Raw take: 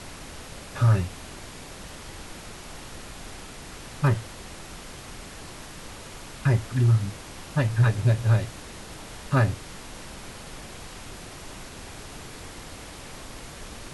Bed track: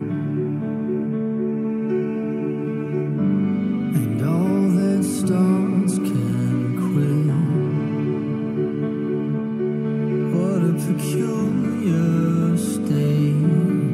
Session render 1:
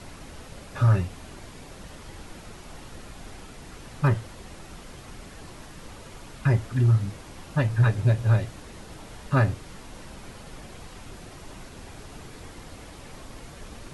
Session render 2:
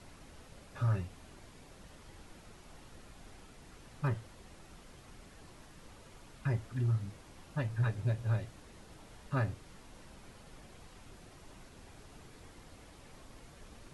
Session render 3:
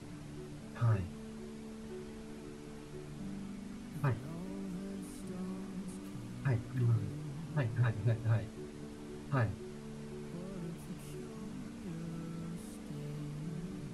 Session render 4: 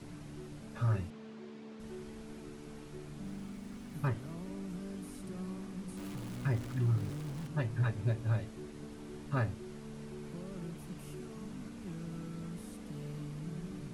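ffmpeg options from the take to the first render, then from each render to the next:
-af "afftdn=nr=6:nf=-42"
-af "volume=0.266"
-filter_complex "[1:a]volume=0.0596[s0];[0:a][s0]amix=inputs=2:normalize=0"
-filter_complex "[0:a]asettb=1/sr,asplit=3[s0][s1][s2];[s0]atrim=end=1.104[s3];[s1]atrim=start=1.1:end=1.8,asetpts=PTS-STARTPTS,afade=t=in:d=0.004:c=qsin,afade=t=out:st=0.696:d=0.004:c=qsin,highpass=200,lowpass=4400[s4];[s2]atrim=start=1.796[s5];[s3][s4]acrossfade=d=0.004:c1=hsin:c2=qsin[s6];[s6][s5]acrossfade=d=0.004:c1=qsin:c2=hsin,asettb=1/sr,asplit=3[s7][s8][s9];[s7]atrim=end=3.264[s10];[s8]atrim=start=3.26:end=4.11,asetpts=PTS-STARTPTS,afade=t=in:d=0.004:c=qsin,afade=t=out:st=0.846:d=0.004:c=qsin,aeval=exprs='val(0)*gte(abs(val(0)),0.00106)':c=same[s11];[s9]atrim=start=4.106[s12];[s10][s11]acrossfade=d=0.004:c1=hsin:c2=qsin[s13];[s13][s12]acrossfade=d=0.004:c1=qsin:c2=hsin,asettb=1/sr,asplit=3[s14][s15][s16];[s14]atrim=end=5.974[s17];[s15]atrim=start=5.97:end=7.47,asetpts=PTS-STARTPTS,afade=t=in:d=0.004:c=qsin,afade=t=out:st=1.496:d=0.004:c=qsin,aeval=exprs='val(0)+0.5*0.00596*sgn(val(0))':c=same[s18];[s16]atrim=start=7.466[s19];[s17][s18]acrossfade=d=0.004:c1=hsin:c2=qsin[s20];[s20][s19]acrossfade=d=0.004:c1=qsin:c2=hsin"

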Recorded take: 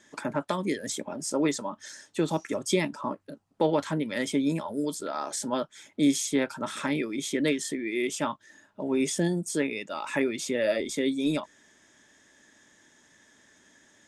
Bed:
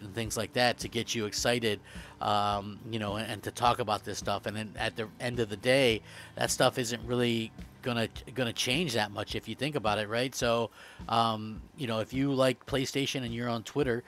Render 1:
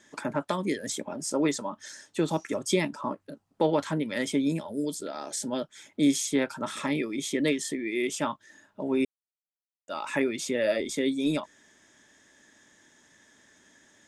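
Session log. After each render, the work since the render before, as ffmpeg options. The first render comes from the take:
-filter_complex "[0:a]asettb=1/sr,asplit=3[s0][s1][s2];[s0]atrim=end=4.474[s3];[s1]atrim=start=4.47:end=5.69,asetpts=PTS-STARTPTS,afade=t=in:d=0.004:c=qsin,afade=t=out:st=1.216:d=0.004:c=qsin,equalizer=f=1100:w=1.4:g=-9[s4];[s2]atrim=start=5.686[s5];[s3][s4]acrossfade=d=0.004:c1=hsin:c2=qsin[s6];[s6][s5]acrossfade=d=0.004:c1=qsin:c2=hsin,asettb=1/sr,asplit=3[s7][s8][s9];[s7]atrim=end=6.734[s10];[s8]atrim=start=6.73:end=8.01,asetpts=PTS-STARTPTS,afade=t=in:d=0.004:c=qsin,afade=t=out:st=1.276:d=0.004:c=qsin,asuperstop=centerf=1500:order=4:qfactor=6.4[s11];[s9]atrim=start=8.006[s12];[s10][s11]acrossfade=d=0.004:c1=hsin:c2=qsin[s13];[s13][s12]acrossfade=d=0.004:c1=qsin:c2=hsin,asplit=3[s14][s15][s16];[s14]atrim=end=9.05,asetpts=PTS-STARTPTS,afade=t=out:st=9.046:d=0.004:c=hsin[s17];[s15]atrim=start=9.05:end=9.88,asetpts=PTS-STARTPTS,volume=0[s18];[s16]atrim=start=9.88,asetpts=PTS-STARTPTS,afade=t=in:d=0.004:c=hsin[s19];[s17][s18][s19]concat=n=3:v=0:a=1"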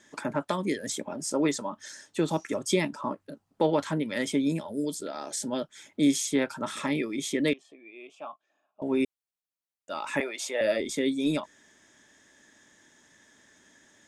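-filter_complex "[0:a]asettb=1/sr,asplit=3[s0][s1][s2];[s0]atrim=end=7.534[s3];[s1]atrim=start=7.53:end=8.82,asetpts=PTS-STARTPTS,afade=t=in:d=0.004:c=qsin,afade=t=out:st=1.286:d=0.004:c=qsin,asplit=3[s4][s5][s6];[s4]bandpass=f=730:t=q:w=8,volume=1[s7];[s5]bandpass=f=1090:t=q:w=8,volume=0.501[s8];[s6]bandpass=f=2440:t=q:w=8,volume=0.355[s9];[s7][s8][s9]amix=inputs=3:normalize=0[s10];[s2]atrim=start=8.816[s11];[s3][s10]acrossfade=d=0.004:c1=hsin:c2=qsin[s12];[s12][s11]acrossfade=d=0.004:c1=qsin:c2=hsin,asettb=1/sr,asplit=3[s13][s14][s15];[s13]atrim=end=10.204[s16];[s14]atrim=start=10.2:end=10.61,asetpts=PTS-STARTPTS,afade=t=in:d=0.004:c=qsin,afade=t=out:st=0.406:d=0.004:c=qsin,highpass=f=710:t=q:w=2.6[s17];[s15]atrim=start=10.606[s18];[s16][s17]acrossfade=d=0.004:c1=hsin:c2=qsin[s19];[s19][s18]acrossfade=d=0.004:c1=qsin:c2=hsin"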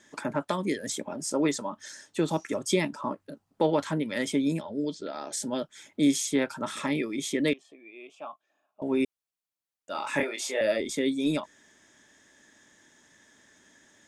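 -filter_complex "[0:a]asettb=1/sr,asplit=3[s0][s1][s2];[s0]atrim=end=4.614[s3];[s1]atrim=start=4.61:end=5.32,asetpts=PTS-STARTPTS,afade=t=in:d=0.004:c=qsin,afade=t=out:st=0.706:d=0.004:c=qsin,lowpass=f=5100:w=0.5412,lowpass=f=5100:w=1.3066[s4];[s2]atrim=start=5.316[s5];[s3][s4]acrossfade=d=0.004:c1=hsin:c2=qsin[s6];[s6][s5]acrossfade=d=0.004:c1=qsin:c2=hsin,asettb=1/sr,asplit=3[s7][s8][s9];[s7]atrim=end=9.924[s10];[s8]atrim=start=9.92:end=10.59,asetpts=PTS-STARTPTS,afade=t=in:d=0.004:c=qsin,afade=t=out:st=0.666:d=0.004:c=qsin,asplit=2[s11][s12];[s12]adelay=27,volume=0.668[s13];[s11][s13]amix=inputs=2:normalize=0,atrim=end_sample=29547[s14];[s9]atrim=start=10.586[s15];[s10][s14]acrossfade=d=0.004:c1=hsin:c2=qsin[s16];[s16][s15]acrossfade=d=0.004:c1=qsin:c2=hsin"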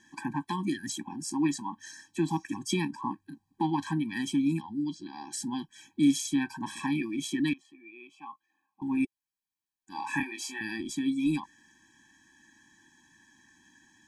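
-af "afftfilt=real='re*eq(mod(floor(b*sr/1024/380),2),0)':imag='im*eq(mod(floor(b*sr/1024/380),2),0)':win_size=1024:overlap=0.75"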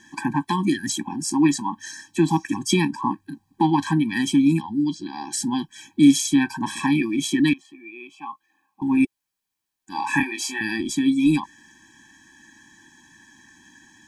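-af "volume=2.99"

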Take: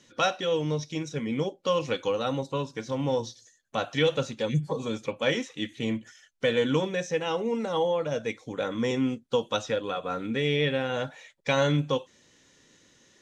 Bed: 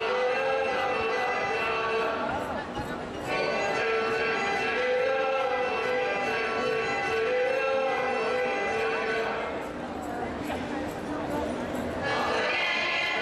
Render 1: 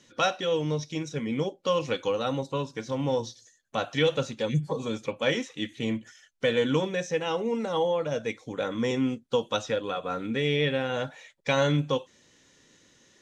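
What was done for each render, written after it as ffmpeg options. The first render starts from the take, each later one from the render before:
-af anull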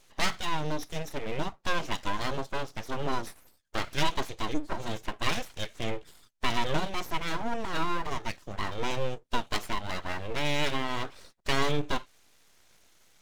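-af "aeval=exprs='abs(val(0))':c=same"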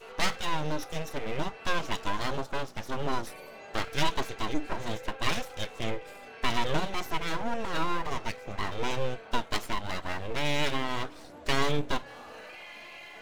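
-filter_complex "[1:a]volume=0.112[s0];[0:a][s0]amix=inputs=2:normalize=0"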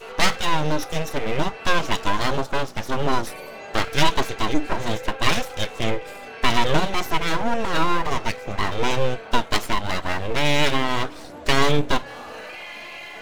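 -af "volume=2.82,alimiter=limit=0.708:level=0:latency=1"

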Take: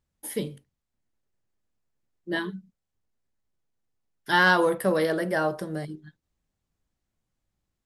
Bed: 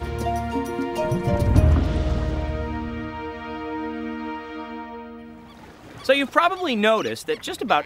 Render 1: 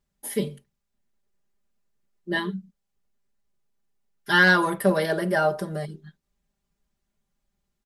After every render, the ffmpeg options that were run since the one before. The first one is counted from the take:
-af "aecho=1:1:5:0.89"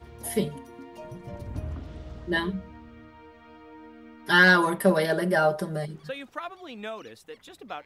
-filter_complex "[1:a]volume=0.126[s0];[0:a][s0]amix=inputs=2:normalize=0"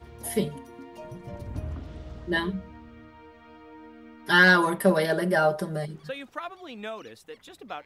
-af anull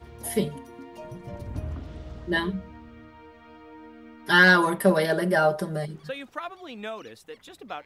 -af "volume=1.12"

